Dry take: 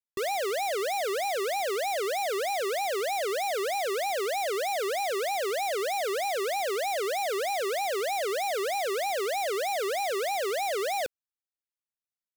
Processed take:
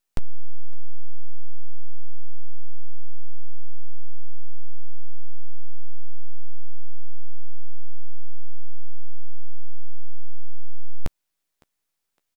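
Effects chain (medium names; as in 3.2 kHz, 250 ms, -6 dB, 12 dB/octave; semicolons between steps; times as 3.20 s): full-wave rectifier; doubling 13 ms -12.5 dB; on a send: thinning echo 560 ms, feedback 30%, level -22 dB; on the sum: trim +15.5 dB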